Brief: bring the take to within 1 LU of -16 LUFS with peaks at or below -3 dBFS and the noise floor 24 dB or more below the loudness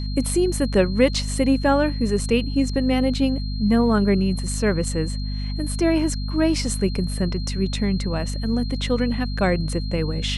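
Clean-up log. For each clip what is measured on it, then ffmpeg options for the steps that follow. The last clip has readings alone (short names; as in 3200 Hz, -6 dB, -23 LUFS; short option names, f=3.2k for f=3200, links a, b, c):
hum 50 Hz; harmonics up to 250 Hz; hum level -24 dBFS; steady tone 4200 Hz; tone level -37 dBFS; loudness -22.0 LUFS; peak -4.0 dBFS; loudness target -16.0 LUFS
-> -af "bandreject=f=50:t=h:w=6,bandreject=f=100:t=h:w=6,bandreject=f=150:t=h:w=6,bandreject=f=200:t=h:w=6,bandreject=f=250:t=h:w=6"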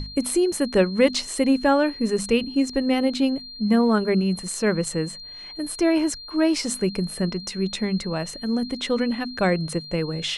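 hum none; steady tone 4200 Hz; tone level -37 dBFS
-> -af "bandreject=f=4.2k:w=30"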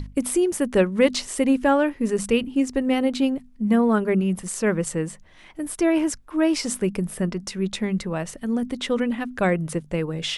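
steady tone none; loudness -23.5 LUFS; peak -6.0 dBFS; loudness target -16.0 LUFS
-> -af "volume=7.5dB,alimiter=limit=-3dB:level=0:latency=1"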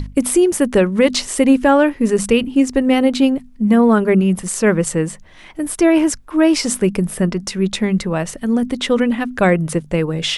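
loudness -16.0 LUFS; peak -3.0 dBFS; noise floor -41 dBFS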